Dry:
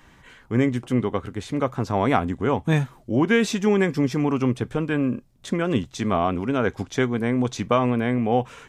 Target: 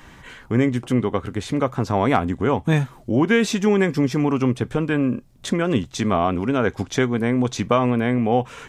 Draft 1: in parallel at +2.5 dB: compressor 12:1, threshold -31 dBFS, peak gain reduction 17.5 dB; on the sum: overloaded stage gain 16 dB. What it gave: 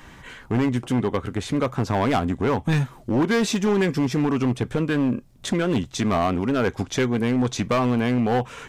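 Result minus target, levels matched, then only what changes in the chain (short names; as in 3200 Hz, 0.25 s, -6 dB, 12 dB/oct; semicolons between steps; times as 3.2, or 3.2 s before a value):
overloaded stage: distortion +37 dB
change: overloaded stage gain 5.5 dB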